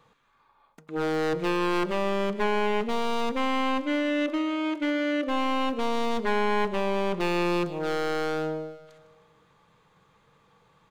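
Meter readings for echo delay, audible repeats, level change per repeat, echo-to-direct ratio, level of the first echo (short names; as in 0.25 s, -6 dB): 0.155 s, 4, -4.5 dB, -15.0 dB, -17.0 dB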